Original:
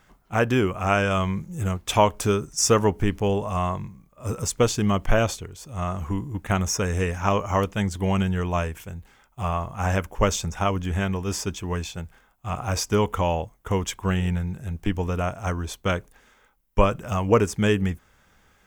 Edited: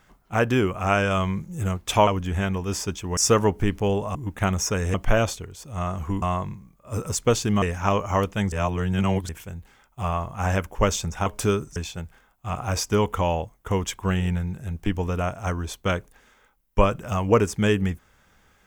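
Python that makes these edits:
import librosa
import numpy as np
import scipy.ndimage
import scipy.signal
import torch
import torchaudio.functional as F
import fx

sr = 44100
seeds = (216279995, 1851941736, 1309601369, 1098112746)

y = fx.edit(x, sr, fx.swap(start_s=2.07, length_s=0.5, other_s=10.66, other_length_s=1.1),
    fx.swap(start_s=3.55, length_s=1.4, other_s=6.23, other_length_s=0.79),
    fx.reverse_span(start_s=7.92, length_s=0.77), tone=tone)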